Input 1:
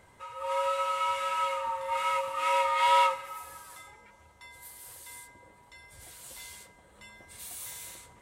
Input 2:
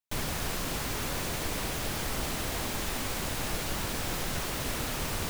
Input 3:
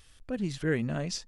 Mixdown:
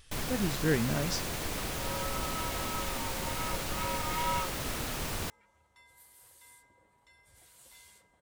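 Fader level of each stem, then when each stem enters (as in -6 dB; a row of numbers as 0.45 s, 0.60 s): -10.5 dB, -2.5 dB, 0.0 dB; 1.35 s, 0.00 s, 0.00 s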